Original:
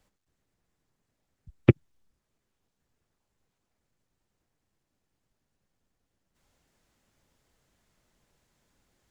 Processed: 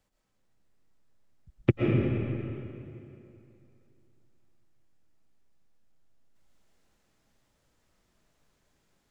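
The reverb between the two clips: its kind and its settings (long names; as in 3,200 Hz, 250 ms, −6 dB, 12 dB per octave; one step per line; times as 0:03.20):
comb and all-pass reverb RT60 2.8 s, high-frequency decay 0.8×, pre-delay 85 ms, DRR −4 dB
level −5 dB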